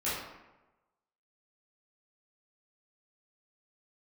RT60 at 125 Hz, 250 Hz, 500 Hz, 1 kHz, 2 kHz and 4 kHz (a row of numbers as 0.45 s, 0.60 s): 1.1 s, 1.0 s, 1.1 s, 1.1 s, 0.90 s, 0.60 s